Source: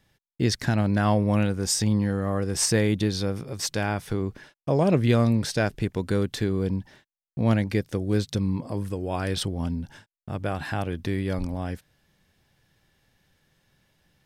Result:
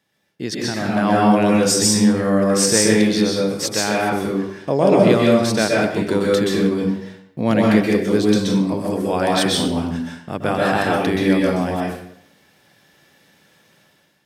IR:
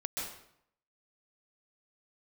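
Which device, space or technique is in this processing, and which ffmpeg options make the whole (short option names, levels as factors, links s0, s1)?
far laptop microphone: -filter_complex "[1:a]atrim=start_sample=2205[s0];[0:a][s0]afir=irnorm=-1:irlink=0,highpass=200,dynaudnorm=f=690:g=3:m=3.76"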